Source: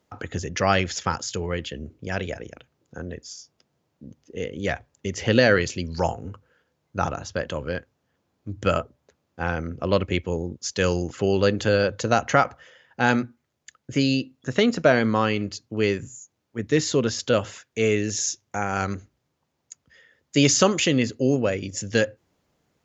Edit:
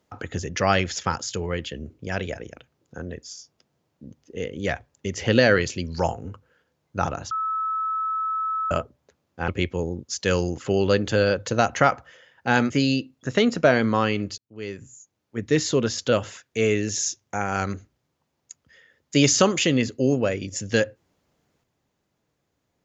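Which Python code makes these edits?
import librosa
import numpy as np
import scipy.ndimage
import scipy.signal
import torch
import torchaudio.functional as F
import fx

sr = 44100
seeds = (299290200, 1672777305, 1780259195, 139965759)

y = fx.edit(x, sr, fx.bleep(start_s=7.31, length_s=1.4, hz=1300.0, db=-23.0),
    fx.cut(start_s=9.48, length_s=0.53),
    fx.cut(start_s=13.23, length_s=0.68),
    fx.fade_in_span(start_s=15.59, length_s=1.01), tone=tone)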